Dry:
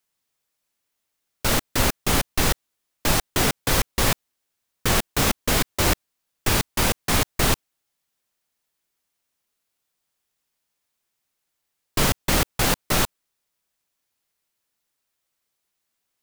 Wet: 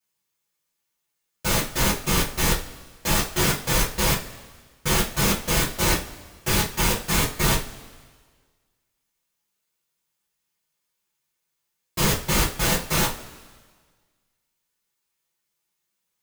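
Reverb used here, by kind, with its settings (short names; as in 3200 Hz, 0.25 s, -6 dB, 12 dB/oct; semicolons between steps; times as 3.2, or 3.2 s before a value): two-slope reverb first 0.27 s, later 1.6 s, from -21 dB, DRR -9.5 dB; gain -10.5 dB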